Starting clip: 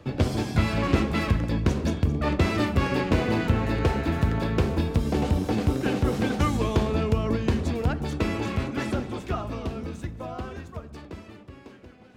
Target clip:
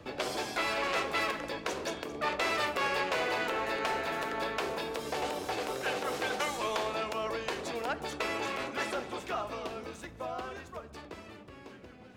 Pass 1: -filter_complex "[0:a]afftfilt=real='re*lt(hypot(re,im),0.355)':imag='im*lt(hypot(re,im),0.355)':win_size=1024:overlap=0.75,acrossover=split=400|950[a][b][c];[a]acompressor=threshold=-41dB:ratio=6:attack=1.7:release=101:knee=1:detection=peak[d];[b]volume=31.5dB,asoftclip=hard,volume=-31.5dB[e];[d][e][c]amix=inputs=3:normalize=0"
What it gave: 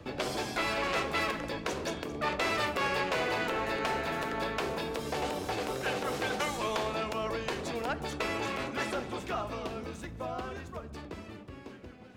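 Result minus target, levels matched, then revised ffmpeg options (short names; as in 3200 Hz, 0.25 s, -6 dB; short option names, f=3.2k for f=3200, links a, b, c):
compressor: peak gain reduction -8 dB
-filter_complex "[0:a]afftfilt=real='re*lt(hypot(re,im),0.355)':imag='im*lt(hypot(re,im),0.355)':win_size=1024:overlap=0.75,acrossover=split=400|950[a][b][c];[a]acompressor=threshold=-50.5dB:ratio=6:attack=1.7:release=101:knee=1:detection=peak[d];[b]volume=31.5dB,asoftclip=hard,volume=-31.5dB[e];[d][e][c]amix=inputs=3:normalize=0"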